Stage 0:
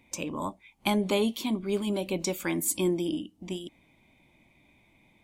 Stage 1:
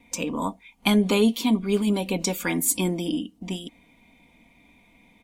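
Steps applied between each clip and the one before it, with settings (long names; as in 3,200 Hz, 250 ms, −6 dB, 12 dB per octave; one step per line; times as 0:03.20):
noise gate with hold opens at −56 dBFS
comb filter 4.2 ms, depth 58%
level +4.5 dB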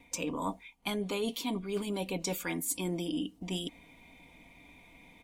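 parametric band 220 Hz −11.5 dB 0.21 octaves
reversed playback
downward compressor 6 to 1, threshold −33 dBFS, peak gain reduction 15 dB
reversed playback
level +1.5 dB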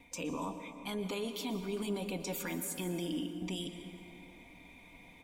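brickwall limiter −29.5 dBFS, peak gain reduction 9 dB
dense smooth reverb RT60 2.9 s, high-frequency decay 0.5×, pre-delay 105 ms, DRR 8 dB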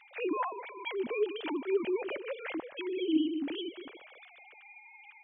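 three sine waves on the formant tracks
level +4.5 dB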